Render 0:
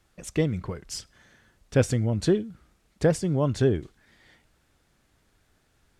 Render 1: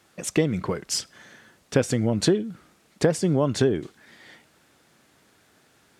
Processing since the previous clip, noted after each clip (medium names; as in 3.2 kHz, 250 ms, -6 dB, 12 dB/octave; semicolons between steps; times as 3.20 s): high-pass 170 Hz 12 dB/octave; compression 5:1, threshold -26 dBFS, peak gain reduction 10 dB; trim +9 dB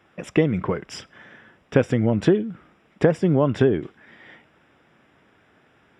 Savitzky-Golay filter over 25 samples; trim +3 dB